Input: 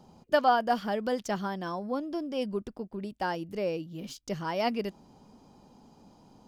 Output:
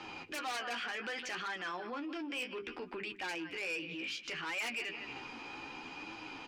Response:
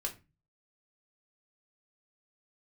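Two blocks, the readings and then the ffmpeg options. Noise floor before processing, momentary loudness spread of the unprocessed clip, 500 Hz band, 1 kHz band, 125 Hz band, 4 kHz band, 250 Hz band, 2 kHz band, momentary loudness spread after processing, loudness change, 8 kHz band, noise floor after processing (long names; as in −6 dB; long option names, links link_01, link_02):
−59 dBFS, 13 LU, −14.0 dB, −12.5 dB, −16.0 dB, +0.5 dB, −11.0 dB, +1.0 dB, 8 LU, −8.0 dB, +1.0 dB, −50 dBFS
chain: -filter_complex "[0:a]aecho=1:1:155|310:0.0668|0.0207,flanger=delay=8.6:depth=9:regen=29:speed=0.65:shape=triangular,lowpass=6500,acrossover=split=110|1500|2600[link_01][link_02][link_03][link_04];[link_03]aeval=exprs='0.0316*sin(PI/2*6.31*val(0)/0.0316)':channel_layout=same[link_05];[link_01][link_02][link_05][link_04]amix=inputs=4:normalize=0,equalizer=frequency=200:width_type=o:width=0.33:gain=-12,equalizer=frequency=315:width_type=o:width=0.33:gain=10,equalizer=frequency=630:width_type=o:width=0.33:gain=-8,equalizer=frequency=1000:width_type=o:width=0.33:gain=-3,equalizer=frequency=2500:width_type=o:width=0.33:gain=11,asoftclip=type=tanh:threshold=-27dB,acompressor=threshold=-43dB:ratio=10,bandreject=frequency=50:width_type=h:width=6,bandreject=frequency=100:width_type=h:width=6,bandreject=frequency=150:width_type=h:width=6,bandreject=frequency=200:width_type=h:width=6,bandreject=frequency=250:width_type=h:width=6,bandreject=frequency=300:width_type=h:width=6,bandreject=frequency=350:width_type=h:width=6,bandreject=frequency=400:width_type=h:width=6,alimiter=level_in=21dB:limit=-24dB:level=0:latency=1:release=10,volume=-21dB,lowshelf=frequency=240:gain=-10,volume=12.5dB"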